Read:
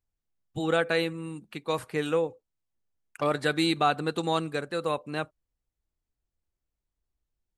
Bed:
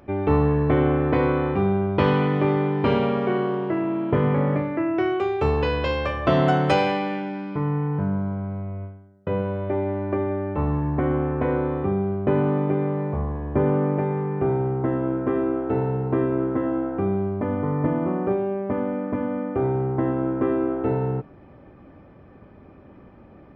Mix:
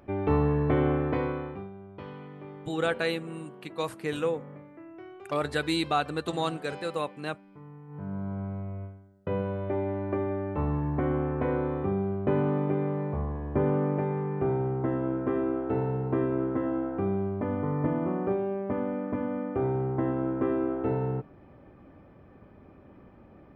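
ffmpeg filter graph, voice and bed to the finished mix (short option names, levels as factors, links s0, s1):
-filter_complex "[0:a]adelay=2100,volume=0.75[s0];[1:a]volume=4.47,afade=t=out:st=0.91:d=0.79:silence=0.125893,afade=t=in:st=7.87:d=0.54:silence=0.125893[s1];[s0][s1]amix=inputs=2:normalize=0"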